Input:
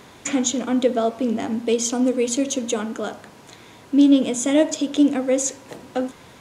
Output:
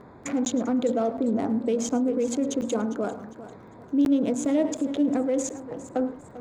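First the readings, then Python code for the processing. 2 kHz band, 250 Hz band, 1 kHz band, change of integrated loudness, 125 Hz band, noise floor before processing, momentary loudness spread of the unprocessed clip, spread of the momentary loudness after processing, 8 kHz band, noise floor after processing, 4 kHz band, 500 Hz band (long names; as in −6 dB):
−9.0 dB, −4.5 dB, −3.5 dB, −5.0 dB, can't be measured, −46 dBFS, 12 LU, 9 LU, −10.0 dB, −48 dBFS, −12.0 dB, −4.5 dB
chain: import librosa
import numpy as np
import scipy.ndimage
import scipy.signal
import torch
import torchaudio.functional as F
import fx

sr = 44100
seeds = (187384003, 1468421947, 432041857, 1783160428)

p1 = fx.wiener(x, sr, points=15)
p2 = fx.dmg_crackle(p1, sr, seeds[0], per_s=20.0, level_db=-40.0)
p3 = fx.high_shelf(p2, sr, hz=2300.0, db=-10.0)
p4 = p3 + 10.0 ** (-19.0 / 20.0) * np.pad(p3, (int(108 * sr / 1000.0), 0))[:len(p3)]
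p5 = fx.over_compress(p4, sr, threshold_db=-23.0, ratio=-0.5)
p6 = p4 + (p5 * 10.0 ** (-1.5 / 20.0))
p7 = fx.buffer_crackle(p6, sr, first_s=0.45, period_s=0.72, block=512, kind='zero')
p8 = fx.echo_warbled(p7, sr, ms=399, feedback_pct=33, rate_hz=2.8, cents=115, wet_db=-15.0)
y = p8 * 10.0 ** (-7.0 / 20.0)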